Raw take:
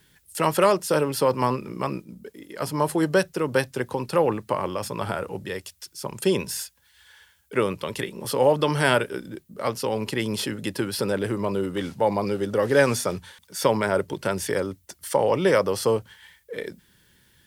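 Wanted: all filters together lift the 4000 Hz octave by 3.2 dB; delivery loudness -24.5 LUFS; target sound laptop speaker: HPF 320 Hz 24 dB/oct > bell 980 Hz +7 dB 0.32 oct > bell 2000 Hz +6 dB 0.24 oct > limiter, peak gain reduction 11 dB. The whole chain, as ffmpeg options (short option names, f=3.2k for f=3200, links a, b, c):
-af "highpass=f=320:w=0.5412,highpass=f=320:w=1.3066,equalizer=f=980:t=o:w=0.32:g=7,equalizer=f=2k:t=o:w=0.24:g=6,equalizer=f=4k:t=o:g=4,volume=3.5dB,alimiter=limit=-11.5dB:level=0:latency=1"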